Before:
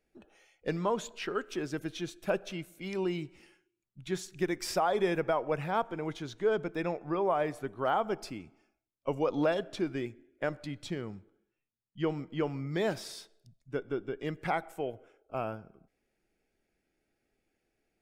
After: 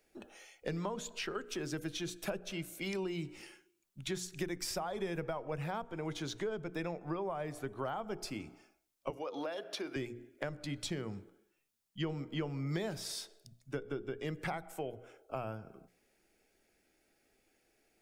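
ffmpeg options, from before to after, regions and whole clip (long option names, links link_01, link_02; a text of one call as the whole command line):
ffmpeg -i in.wav -filter_complex "[0:a]asettb=1/sr,asplit=3[link_01][link_02][link_03];[link_01]atrim=end=9.104[link_04];[link_02]atrim=start=9.1:end=9.96,asetpts=PTS-STARTPTS,afade=type=in:duration=0.004:curve=qsin,afade=type=out:start_time=0.856:duration=0.004:curve=qsin,highpass=410,equalizer=frequency=7600:width_type=o:width=0.28:gain=-11,acompressor=threshold=-34dB:ratio=2:attack=3.2:release=140:knee=1:detection=peak[link_05];[link_03]atrim=start=9.956[link_06];[link_04][link_05]acrossfade=duration=0.004:curve1=hsin:curve2=qsin[link_07];[link_07][link_06]acrossfade=duration=0.004:curve1=qsin:curve2=hsin,bass=frequency=250:gain=-5,treble=frequency=4000:gain=5,bandreject=frequency=60:width_type=h:width=6,bandreject=frequency=120:width_type=h:width=6,bandreject=frequency=180:width_type=h:width=6,bandreject=frequency=240:width_type=h:width=6,bandreject=frequency=300:width_type=h:width=6,bandreject=frequency=360:width_type=h:width=6,bandreject=frequency=420:width_type=h:width=6,bandreject=frequency=480:width_type=h:width=6,acrossover=split=160[link_08][link_09];[link_09]acompressor=threshold=-44dB:ratio=6[link_10];[link_08][link_10]amix=inputs=2:normalize=0,volume=6.5dB" out.wav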